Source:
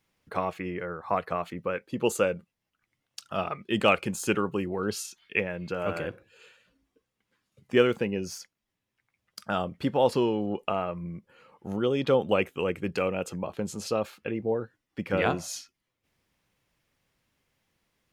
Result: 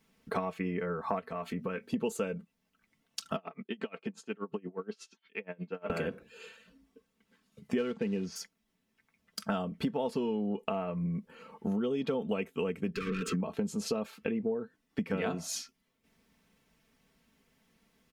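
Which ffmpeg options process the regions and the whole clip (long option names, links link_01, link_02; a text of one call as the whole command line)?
ffmpeg -i in.wav -filter_complex "[0:a]asettb=1/sr,asplit=3[link_01][link_02][link_03];[link_01]atrim=end=1.194[link_04];[link_02]atrim=start=1.19:end=1.94,asetpts=PTS-STARTPTS,afade=type=in:duration=0.004:curve=qsin,afade=type=out:start_time=0.746:duration=0.004:curve=qsin,bandreject=frequency=119.5:width_type=h:width=4,bandreject=frequency=239:width_type=h:width=4,acompressor=threshold=-42dB:ratio=2:attack=3.2:release=140:knee=1:detection=peak,asplit=2[link_05][link_06];[link_06]adelay=21,volume=-13dB[link_07];[link_05][link_07]amix=inputs=2:normalize=0,atrim=end_sample=33075[link_08];[link_03]atrim=start=1.936[link_09];[link_04][link_08]acrossfade=duration=0.004:curve1=hsin:curve2=qsin[link_10];[link_10][link_09]acrossfade=duration=0.004:curve1=qsin:curve2=hsin,asettb=1/sr,asplit=3[link_11][link_12][link_13];[link_11]atrim=end=3.364[link_14];[link_12]atrim=start=3.36:end=5.9,asetpts=PTS-STARTPTS,afade=type=in:duration=0.004:curve=qsin,afade=type=out:start_time=2.536:duration=0.004:curve=qsin,acompressor=threshold=-35dB:ratio=6:attack=3.2:release=140:knee=1:detection=peak,highpass=220,lowpass=3700,aeval=exprs='val(0)*pow(10,-28*(0.5-0.5*cos(2*PI*8.4*n/s))/20)':channel_layout=same[link_15];[link_13]atrim=start=5.896[link_16];[link_14][link_15]acrossfade=duration=0.004:curve1=hsin:curve2=qsin[link_17];[link_17][link_16]acrossfade=duration=0.004:curve1=qsin:curve2=hsin,asettb=1/sr,asplit=3[link_18][link_19][link_20];[link_18]atrim=end=7.784[link_21];[link_19]atrim=start=7.78:end=8.36,asetpts=PTS-STARTPTS,afade=type=in:duration=0.004:curve=qsin,afade=type=out:start_time=0.576:duration=0.004:curve=qsin,acrusher=bits=4:mode=log:mix=0:aa=0.000001,lowpass=4000[link_22];[link_20]atrim=start=8.356[link_23];[link_21][link_22]acrossfade=duration=0.004:curve1=hsin:curve2=qsin[link_24];[link_24][link_23]acrossfade=duration=0.004:curve1=qsin:curve2=hsin,asettb=1/sr,asplit=3[link_25][link_26][link_27];[link_25]atrim=end=12.944[link_28];[link_26]atrim=start=12.94:end=13.41,asetpts=PTS-STARTPTS,afade=type=in:duration=0.004:curve=qsin,afade=type=out:start_time=0.466:duration=0.004:curve=qsin,asplit=2[link_29][link_30];[link_30]highpass=frequency=720:poles=1,volume=25dB,asoftclip=type=tanh:threshold=-16dB[link_31];[link_29][link_31]amix=inputs=2:normalize=0,lowpass=frequency=1100:poles=1,volume=-6dB,acompressor=threshold=-29dB:ratio=2:attack=3.2:release=140:knee=1:detection=peak,asuperstop=centerf=700:order=8:qfactor=0.93[link_32];[link_27]atrim=start=13.406[link_33];[link_28][link_32]acrossfade=duration=0.004:curve1=hsin:curve2=qsin[link_34];[link_34][link_33]acrossfade=duration=0.004:curve1=qsin:curve2=hsin,equalizer=frequency=230:width_type=o:width=1.8:gain=6,aecho=1:1:4.5:0.64,acompressor=threshold=-32dB:ratio=6,volume=2dB" out.wav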